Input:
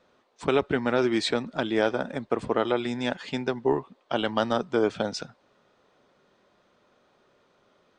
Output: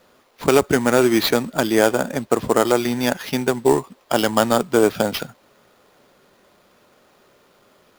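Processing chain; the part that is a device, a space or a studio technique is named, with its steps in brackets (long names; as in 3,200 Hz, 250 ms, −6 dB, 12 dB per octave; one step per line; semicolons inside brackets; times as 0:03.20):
early companding sampler (sample-rate reduction 8,200 Hz, jitter 0%; log-companded quantiser 6 bits)
level +8 dB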